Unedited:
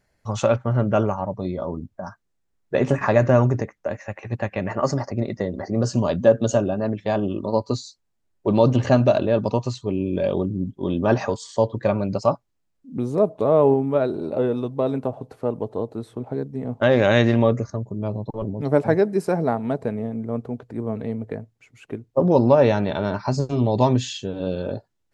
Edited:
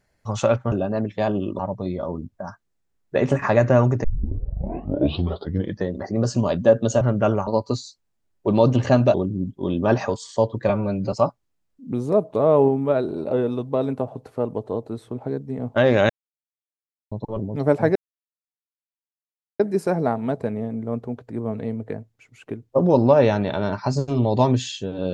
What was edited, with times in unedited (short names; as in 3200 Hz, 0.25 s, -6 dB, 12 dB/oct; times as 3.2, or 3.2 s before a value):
0.72–1.18 swap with 6.6–7.47
3.63 tape start 1.90 s
9.14–10.34 cut
11.89–12.18 stretch 1.5×
17.15–18.17 mute
19.01 insert silence 1.64 s